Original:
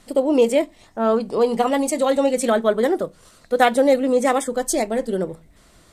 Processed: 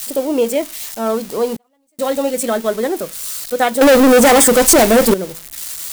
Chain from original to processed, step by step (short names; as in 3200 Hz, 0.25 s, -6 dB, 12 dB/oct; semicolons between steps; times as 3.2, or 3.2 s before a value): switching spikes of -18.5 dBFS; 1.56–1.99 flipped gate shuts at -21 dBFS, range -42 dB; 3.81–5.14 sample leveller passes 5